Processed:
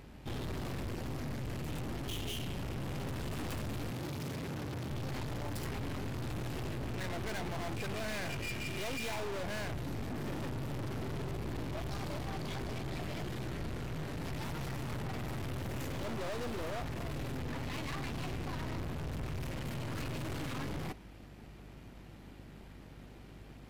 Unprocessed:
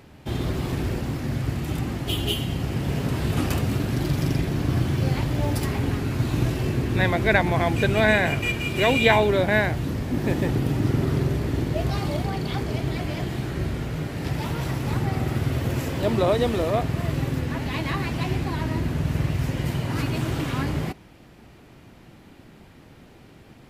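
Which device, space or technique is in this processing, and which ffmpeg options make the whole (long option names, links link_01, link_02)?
valve amplifier with mains hum: -filter_complex "[0:a]aeval=exprs='(tanh(56.2*val(0)+0.6)-tanh(0.6))/56.2':channel_layout=same,aeval=exprs='val(0)+0.00282*(sin(2*PI*50*n/s)+sin(2*PI*2*50*n/s)/2+sin(2*PI*3*50*n/s)/3+sin(2*PI*4*50*n/s)/4+sin(2*PI*5*50*n/s)/5)':channel_layout=same,asettb=1/sr,asplit=3[link_01][link_02][link_03];[link_01]atrim=end=3.914[link_04];[link_02]atrim=start=3.91:end=4.9,asetpts=PTS-STARTPTS,afade=type=in:duration=0.004:curve=qsin,afade=type=out:start_time=0.986:duration=0.004:curve=qsin,highpass=79[link_05];[link_03]atrim=start=4.896[link_06];[link_04][link_05]acrossfade=duration=0.004:curve1=hsin:curve2=qsin[link_07];[link_07][link_06]acrossfade=duration=0.004:curve1=qsin:curve2=hsin,volume=-2.5dB"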